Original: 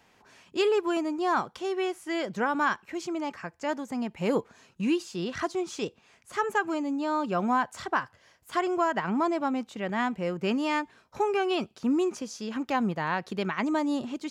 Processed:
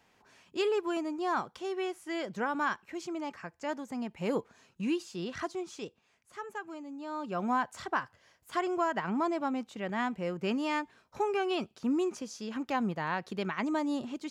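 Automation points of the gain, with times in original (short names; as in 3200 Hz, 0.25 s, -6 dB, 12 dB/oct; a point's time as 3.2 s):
5.36 s -5 dB
6.39 s -13.5 dB
6.91 s -13.5 dB
7.51 s -4 dB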